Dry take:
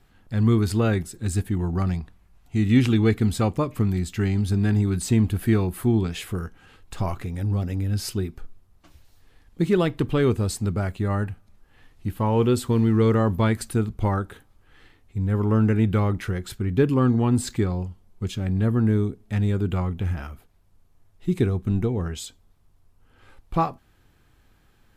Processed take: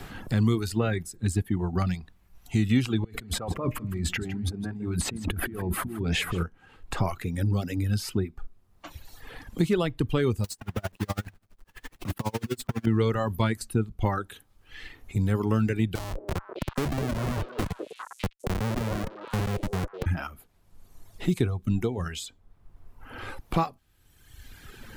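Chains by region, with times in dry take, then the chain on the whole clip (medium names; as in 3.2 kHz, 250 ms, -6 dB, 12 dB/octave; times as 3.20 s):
3.04–6.43 s: compressor with a negative ratio -32 dBFS + delay 158 ms -10.5 dB
10.44–12.87 s: block-companded coder 3-bit + compression 10:1, threshold -23 dBFS + logarithmic tremolo 12 Hz, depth 24 dB
15.95–20.06 s: flange 1.5 Hz, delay 6.3 ms, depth 10 ms, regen +86% + Schmitt trigger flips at -25 dBFS + repeats whose band climbs or falls 202 ms, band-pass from 460 Hz, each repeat 1.4 oct, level -2 dB
whole clip: reverb removal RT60 1.5 s; three bands compressed up and down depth 70%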